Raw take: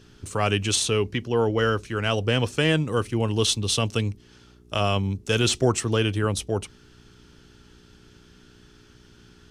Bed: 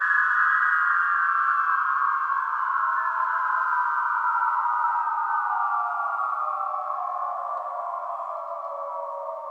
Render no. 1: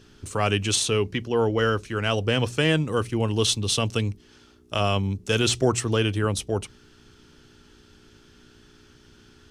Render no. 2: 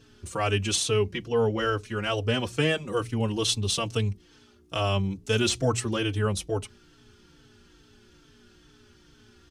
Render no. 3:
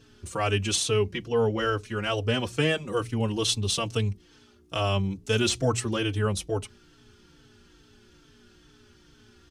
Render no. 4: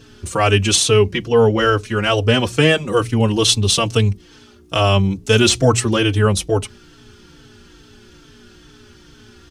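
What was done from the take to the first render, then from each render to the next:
hum removal 60 Hz, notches 3
barber-pole flanger 4 ms −2.3 Hz
no processing that can be heard
level +11 dB; brickwall limiter −1 dBFS, peak gain reduction 1 dB

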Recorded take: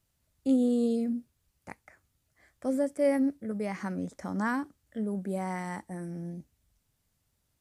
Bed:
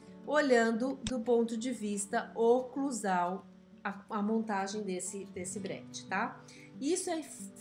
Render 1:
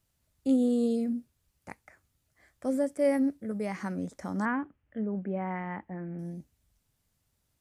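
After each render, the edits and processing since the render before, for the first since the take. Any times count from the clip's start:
0:04.45–0:06.19: Butterworth low-pass 2,900 Hz 48 dB per octave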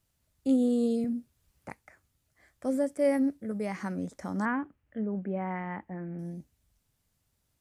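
0:01.04–0:01.70: multiband upward and downward compressor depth 40%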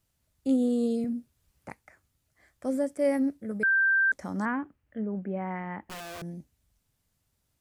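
0:03.63–0:04.12: beep over 1,570 Hz −20 dBFS
0:05.82–0:06.22: wrap-around overflow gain 36 dB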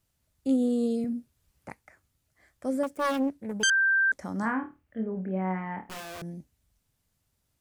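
0:02.83–0:03.70: phase distortion by the signal itself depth 0.57 ms
0:04.40–0:06.05: flutter between parallel walls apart 4.6 metres, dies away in 0.25 s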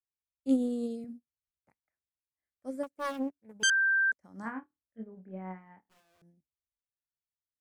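expander for the loud parts 2.5 to 1, over −44 dBFS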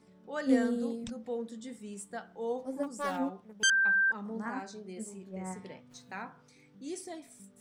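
mix in bed −8 dB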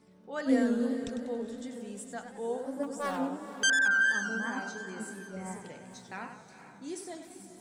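feedback delay with all-pass diffusion 464 ms, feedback 42%, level −11.5 dB
feedback echo with a swinging delay time 94 ms, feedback 48%, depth 175 cents, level −9 dB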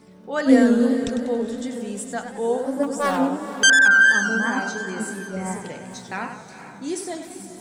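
level +11.5 dB

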